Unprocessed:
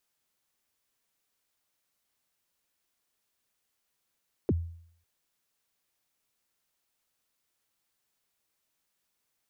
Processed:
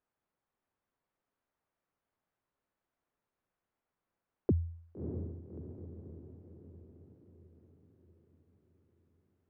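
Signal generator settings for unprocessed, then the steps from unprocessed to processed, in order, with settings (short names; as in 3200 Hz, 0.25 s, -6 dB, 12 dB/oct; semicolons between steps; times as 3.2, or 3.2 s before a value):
kick drum length 0.55 s, from 480 Hz, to 84 Hz, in 37 ms, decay 0.62 s, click off, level -20 dB
LPF 1300 Hz 12 dB/oct; on a send: diffused feedback echo 0.624 s, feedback 54%, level -6.5 dB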